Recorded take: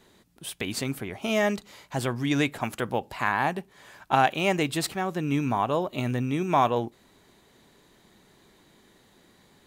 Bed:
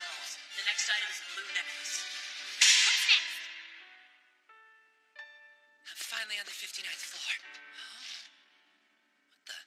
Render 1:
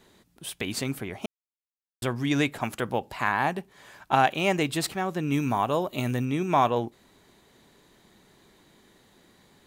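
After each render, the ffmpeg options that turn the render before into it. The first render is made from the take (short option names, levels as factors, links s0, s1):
-filter_complex "[0:a]asettb=1/sr,asplit=3[s0][s1][s2];[s0]atrim=end=5.324[s3];[s1]atrim=start=5.32:end=6.25,asetpts=PTS-STARTPTS,afade=t=in:d=0.004:c=qsin,afade=t=out:st=0.926:d=0.004:c=qsin,highshelf=f=7400:g=9.5[s4];[s2]atrim=start=6.246[s5];[s3][s4]acrossfade=d=0.004:c1=hsin:c2=qsin[s6];[s6][s5]acrossfade=d=0.004:c1=qsin:c2=hsin,asplit=3[s7][s8][s9];[s7]atrim=end=1.26,asetpts=PTS-STARTPTS,afade=t=out:st=1.256:d=0.004:c=hsin[s10];[s8]atrim=start=1.26:end=2.02,asetpts=PTS-STARTPTS,volume=0[s11];[s9]atrim=start=2.02,asetpts=PTS-STARTPTS,afade=t=in:d=0.004:c=hsin[s12];[s10][s11][s12]concat=n=3:v=0:a=1"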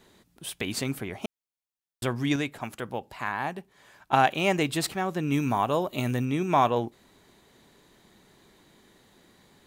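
-filter_complex "[0:a]asplit=3[s0][s1][s2];[s0]atrim=end=2.362[s3];[s1]atrim=start=2.358:end=4.132,asetpts=PTS-STARTPTS,volume=0.531[s4];[s2]atrim=start=4.128[s5];[s3][s4]acrossfade=d=0.004:c1=hsin:c2=hsin[s6];[s6][s5]acrossfade=d=0.004:c1=hsin:c2=hsin"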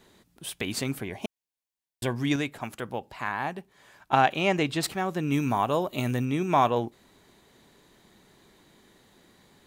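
-filter_complex "[0:a]asettb=1/sr,asplit=3[s0][s1][s2];[s0]atrim=end=1.034[s3];[s1]atrim=start=1.03:end=2.17,asetpts=PTS-STARTPTS,afade=t=in:d=0.004:c=qsin,afade=t=out:st=1.136:d=0.004:c=qsin,asuperstop=centerf=1300:order=4:qfactor=5[s4];[s2]atrim=start=2.166[s5];[s3][s4]acrossfade=d=0.004:c1=hsin:c2=qsin[s6];[s6][s5]acrossfade=d=0.004:c1=qsin:c2=hsin,asettb=1/sr,asplit=3[s7][s8][s9];[s7]atrim=end=2.934[s10];[s8]atrim=start=2.93:end=4.83,asetpts=PTS-STARTPTS,afade=t=in:d=0.004:c=qsin,afade=t=out:st=1.896:d=0.004:c=qsin,acrossover=split=6700[s11][s12];[s12]acompressor=threshold=0.00126:ratio=4:attack=1:release=60[s13];[s11][s13]amix=inputs=2:normalize=0[s14];[s9]atrim=start=4.826[s15];[s10][s14]acrossfade=d=0.004:c1=hsin:c2=qsin[s16];[s16][s15]acrossfade=d=0.004:c1=qsin:c2=hsin"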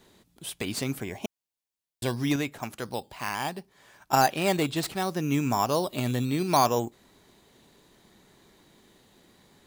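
-filter_complex "[0:a]acrossover=split=1600[s0][s1];[s0]acrusher=samples=9:mix=1:aa=0.000001:lfo=1:lforange=5.4:lforate=0.69[s2];[s1]aeval=exprs='0.0531*(abs(mod(val(0)/0.0531+3,4)-2)-1)':c=same[s3];[s2][s3]amix=inputs=2:normalize=0"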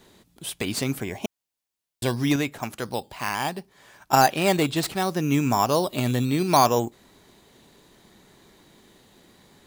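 -af "volume=1.58"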